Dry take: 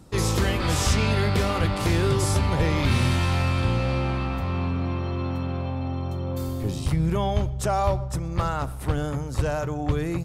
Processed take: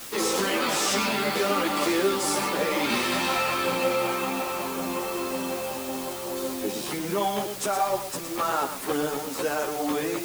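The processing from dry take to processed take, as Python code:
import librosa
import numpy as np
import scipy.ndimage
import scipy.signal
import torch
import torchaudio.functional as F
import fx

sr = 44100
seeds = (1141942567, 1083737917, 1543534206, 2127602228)

p1 = scipy.signal.sosfilt(scipy.signal.butter(4, 250.0, 'highpass', fs=sr, output='sos'), x)
p2 = fx.over_compress(p1, sr, threshold_db=-29.0, ratio=-1.0)
p3 = p1 + (p2 * 10.0 ** (-1.0 / 20.0))
p4 = fx.quant_dither(p3, sr, seeds[0], bits=6, dither='triangular')
p5 = p4 + 10.0 ** (-9.0 / 20.0) * np.pad(p4, (int(116 * sr / 1000.0), 0))[:len(p4)]
y = fx.ensemble(p5, sr)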